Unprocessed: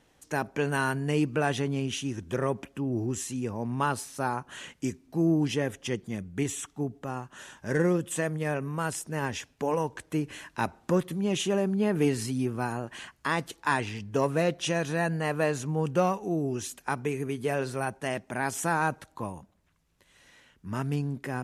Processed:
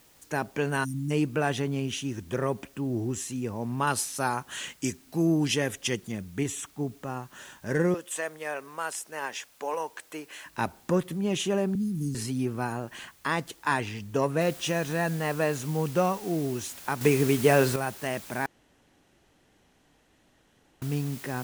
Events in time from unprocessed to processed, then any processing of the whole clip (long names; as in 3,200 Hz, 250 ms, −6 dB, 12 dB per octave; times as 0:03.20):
0:00.84–0:01.11: time-frequency box erased 350–5,100 Hz
0:03.87–0:06.12: high-shelf EQ 2,000 Hz +9.5 dB
0:07.94–0:10.46: high-pass filter 560 Hz
0:11.75–0:12.15: inverse Chebyshev band-stop filter 720–1,900 Hz, stop band 70 dB
0:14.41: noise floor change −60 dB −46 dB
0:17.01–0:17.76: clip gain +8.5 dB
0:18.46–0:20.82: fill with room tone